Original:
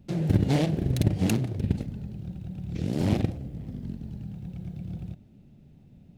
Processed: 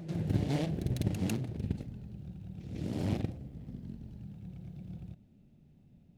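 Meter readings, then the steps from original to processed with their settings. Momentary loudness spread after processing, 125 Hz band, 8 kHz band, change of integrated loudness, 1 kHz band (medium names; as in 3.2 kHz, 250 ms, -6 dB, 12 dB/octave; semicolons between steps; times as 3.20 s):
14 LU, -8.0 dB, -8.0 dB, -8.0 dB, -8.0 dB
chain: reverse echo 150 ms -8.5 dB; trim -8.5 dB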